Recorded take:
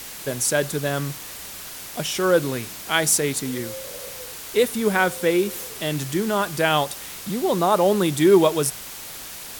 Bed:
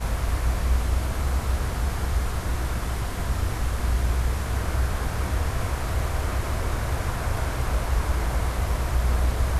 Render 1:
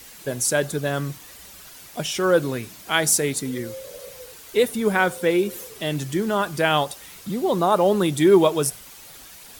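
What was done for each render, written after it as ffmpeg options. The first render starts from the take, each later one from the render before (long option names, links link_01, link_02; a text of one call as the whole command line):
ffmpeg -i in.wav -af "afftdn=noise_reduction=9:noise_floor=-37" out.wav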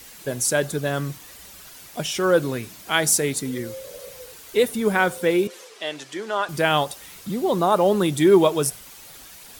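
ffmpeg -i in.wav -filter_complex "[0:a]asettb=1/sr,asplit=3[link_01][link_02][link_03];[link_01]atrim=end=5.474[link_04];[link_02]atrim=start=5.47:end=6.49,asetpts=PTS-STARTPTS,afade=type=in:duration=0.004:curve=qsin,afade=type=out:start_time=1.016:duration=0.004:curve=qsin,highpass=520,lowpass=6200[link_05];[link_03]atrim=start=6.486[link_06];[link_04][link_05]acrossfade=duration=0.004:curve1=hsin:curve2=qsin[link_07];[link_07][link_06]acrossfade=duration=0.004:curve1=qsin:curve2=hsin" out.wav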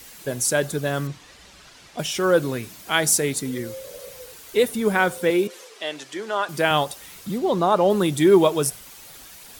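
ffmpeg -i in.wav -filter_complex "[0:a]asettb=1/sr,asplit=3[link_01][link_02][link_03];[link_01]atrim=end=1.074[link_04];[link_02]atrim=start=1.07:end=1.99,asetpts=PTS-STARTPTS,afade=type=in:duration=0.004:curve=qsin,afade=type=out:start_time=0.916:duration=0.004:curve=qsin,lowpass=5500[link_05];[link_03]atrim=start=1.986[link_06];[link_04][link_05]acrossfade=duration=0.004:curve1=hsin:curve2=qsin[link_07];[link_07][link_06]acrossfade=duration=0.004:curve1=qsin:curve2=hsin,asettb=1/sr,asplit=3[link_08][link_09][link_10];[link_08]atrim=end=5.304[link_11];[link_09]atrim=start=5.3:end=6.71,asetpts=PTS-STARTPTS,afade=type=in:duration=0.004:curve=qsin,afade=type=out:start_time=1.406:duration=0.004:curve=qsin,highpass=150[link_12];[link_10]atrim=start=6.706[link_13];[link_11][link_12]acrossfade=duration=0.004:curve1=hsin:curve2=qsin[link_14];[link_14][link_13]acrossfade=duration=0.004:curve1=qsin:curve2=hsin,asettb=1/sr,asplit=3[link_15][link_16][link_17];[link_15]atrim=end=7.384[link_18];[link_16]atrim=start=7.38:end=7.9,asetpts=PTS-STARTPTS,afade=type=in:duration=0.004:curve=qsin,afade=type=out:start_time=0.516:duration=0.004:curve=qsin,acrossover=split=7300[link_19][link_20];[link_20]acompressor=threshold=-54dB:ratio=4:attack=1:release=60[link_21];[link_19][link_21]amix=inputs=2:normalize=0[link_22];[link_17]atrim=start=7.896[link_23];[link_18][link_22]acrossfade=duration=0.004:curve1=hsin:curve2=qsin[link_24];[link_24][link_23]acrossfade=duration=0.004:curve1=qsin:curve2=hsin" out.wav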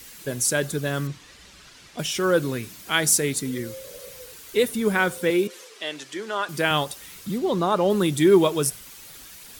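ffmpeg -i in.wav -af "equalizer=frequency=720:width_type=o:width=1:gain=-5.5" out.wav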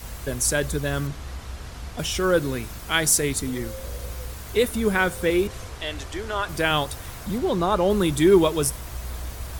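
ffmpeg -i in.wav -i bed.wav -filter_complex "[1:a]volume=-11dB[link_01];[0:a][link_01]amix=inputs=2:normalize=0" out.wav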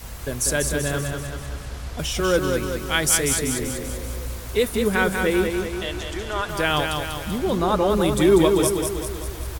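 ffmpeg -i in.wav -af "aecho=1:1:193|386|579|772|965|1158|1351:0.562|0.309|0.17|0.0936|0.0515|0.0283|0.0156" out.wav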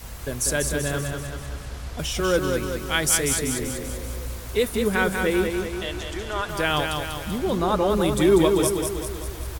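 ffmpeg -i in.wav -af "volume=-1.5dB" out.wav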